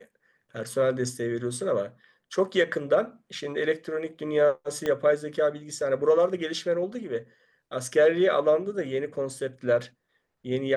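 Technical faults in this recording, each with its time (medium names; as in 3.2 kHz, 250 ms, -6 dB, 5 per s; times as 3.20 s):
4.86 s: pop -16 dBFS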